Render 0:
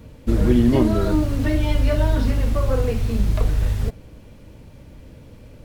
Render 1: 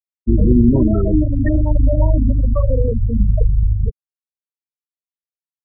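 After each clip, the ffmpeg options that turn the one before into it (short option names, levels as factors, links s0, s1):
-filter_complex "[0:a]afftfilt=real='re*gte(hypot(re,im),0.251)':imag='im*gte(hypot(re,im),0.251)':win_size=1024:overlap=0.75,acrossover=split=290|1300[s0][s1][s2];[s1]alimiter=limit=0.0794:level=0:latency=1:release=89[s3];[s0][s3][s2]amix=inputs=3:normalize=0,volume=1.78"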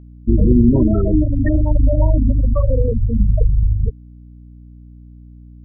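-af "aeval=exprs='val(0)+0.0126*(sin(2*PI*60*n/s)+sin(2*PI*2*60*n/s)/2+sin(2*PI*3*60*n/s)/3+sin(2*PI*4*60*n/s)/4+sin(2*PI*5*60*n/s)/5)':c=same"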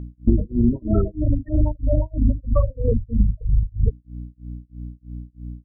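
-af "acompressor=threshold=0.1:ratio=10,tremolo=f=3.1:d=0.99,volume=2.66"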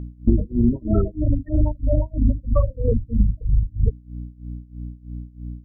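-af "aeval=exprs='val(0)+0.00355*(sin(2*PI*60*n/s)+sin(2*PI*2*60*n/s)/2+sin(2*PI*3*60*n/s)/3+sin(2*PI*4*60*n/s)/4+sin(2*PI*5*60*n/s)/5)':c=same"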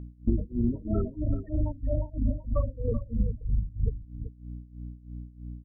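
-af "aecho=1:1:383:0.237,volume=0.376"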